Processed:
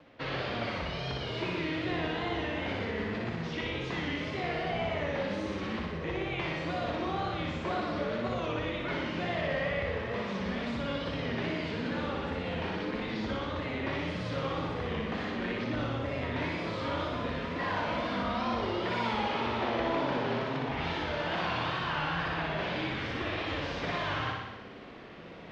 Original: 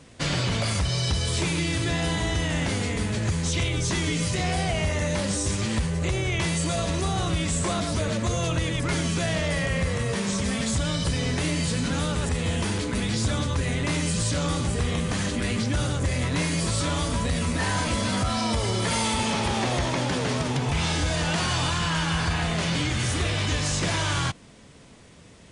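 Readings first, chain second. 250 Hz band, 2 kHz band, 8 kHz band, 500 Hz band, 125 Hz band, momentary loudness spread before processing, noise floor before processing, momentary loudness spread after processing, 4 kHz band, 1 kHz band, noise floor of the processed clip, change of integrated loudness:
-7.0 dB, -5.0 dB, under -25 dB, -3.0 dB, -13.0 dB, 2 LU, -49 dBFS, 4 LU, -10.0 dB, -3.0 dB, -39 dBFS, -7.5 dB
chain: three-band isolator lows -13 dB, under 240 Hz, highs -18 dB, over 7 kHz; reverse; upward compressor, threshold -33 dBFS; reverse; flange 0.21 Hz, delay 1.3 ms, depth 8.2 ms, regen -75%; wow and flutter 120 cents; distance through air 320 m; on a send: flutter echo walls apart 10.3 m, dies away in 1.1 s

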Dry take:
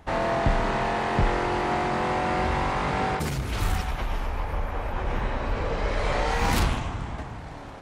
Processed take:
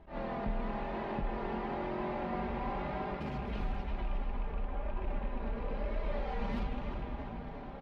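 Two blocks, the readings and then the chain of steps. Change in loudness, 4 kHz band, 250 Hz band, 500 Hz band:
-11.5 dB, -18.0 dB, -8.0 dB, -10.5 dB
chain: rattle on loud lows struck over -25 dBFS, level -25 dBFS; peaking EQ 1.5 kHz -6 dB 1.8 oct; comb 5 ms, depth 50%; compression 3:1, threshold -30 dBFS, peak gain reduction 10.5 dB; flange 1 Hz, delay 3 ms, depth 1.5 ms, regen +40%; distance through air 340 m; on a send: tape echo 350 ms, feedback 71%, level -7 dB, low-pass 4.1 kHz; on the sum: attacks held to a fixed rise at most 170 dB/s

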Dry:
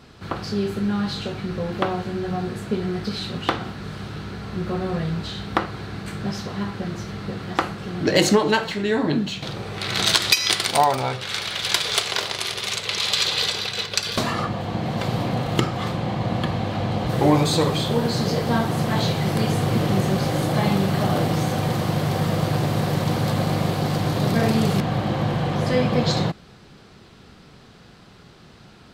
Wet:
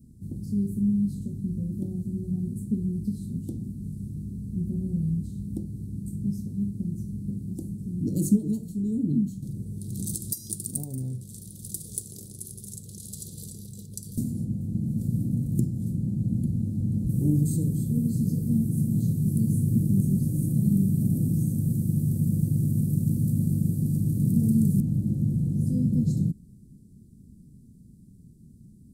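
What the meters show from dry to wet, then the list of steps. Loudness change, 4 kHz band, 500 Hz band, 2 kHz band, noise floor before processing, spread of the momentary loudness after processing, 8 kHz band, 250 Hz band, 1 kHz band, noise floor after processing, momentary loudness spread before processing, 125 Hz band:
-4.5 dB, under -30 dB, -20.5 dB, under -40 dB, -48 dBFS, 13 LU, -7.0 dB, -1.5 dB, under -40 dB, -51 dBFS, 10 LU, -1.0 dB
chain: Chebyshev band-stop 240–9200 Hz, order 3

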